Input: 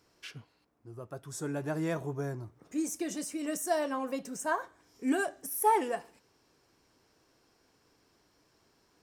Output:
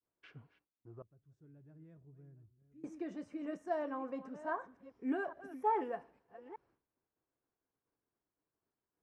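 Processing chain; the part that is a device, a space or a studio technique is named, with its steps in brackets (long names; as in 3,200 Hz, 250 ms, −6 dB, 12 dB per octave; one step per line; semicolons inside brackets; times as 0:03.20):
delay that plays each chunk backwards 410 ms, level −14 dB
hearing-loss simulation (low-pass filter 1,700 Hz 12 dB per octave; downward expander −59 dBFS)
0:01.02–0:02.84: guitar amp tone stack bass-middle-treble 10-0-1
level −6.5 dB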